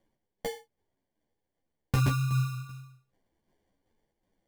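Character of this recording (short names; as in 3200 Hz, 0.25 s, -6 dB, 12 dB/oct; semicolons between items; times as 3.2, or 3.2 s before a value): phasing stages 8, 0.77 Hz, lowest notch 540–1400 Hz; tremolo saw down 2.6 Hz, depth 50%; aliases and images of a low sample rate 1300 Hz, jitter 0%; a shimmering, thickened sound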